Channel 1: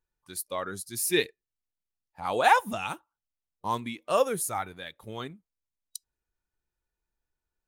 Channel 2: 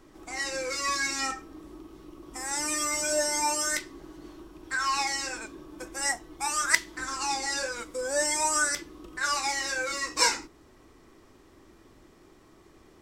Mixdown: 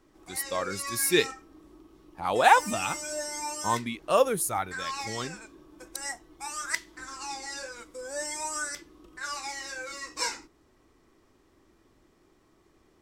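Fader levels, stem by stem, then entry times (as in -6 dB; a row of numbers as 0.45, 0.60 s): +2.0, -7.5 dB; 0.00, 0.00 s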